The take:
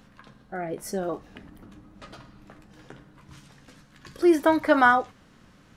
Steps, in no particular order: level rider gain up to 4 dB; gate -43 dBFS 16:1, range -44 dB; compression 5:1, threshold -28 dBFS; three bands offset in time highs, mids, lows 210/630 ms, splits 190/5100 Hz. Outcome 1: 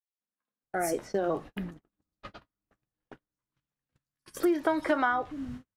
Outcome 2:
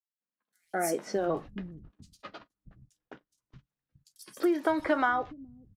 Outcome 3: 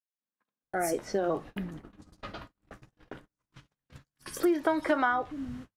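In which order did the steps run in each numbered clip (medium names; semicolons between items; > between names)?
three bands offset in time > gate > compression > level rider; compression > gate > three bands offset in time > level rider; three bands offset in time > compression > level rider > gate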